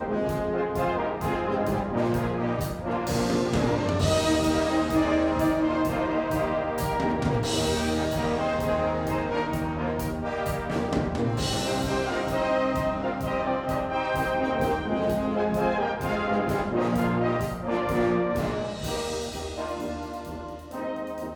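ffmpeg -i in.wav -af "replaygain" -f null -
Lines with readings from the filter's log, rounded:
track_gain = +8.6 dB
track_peak = 0.199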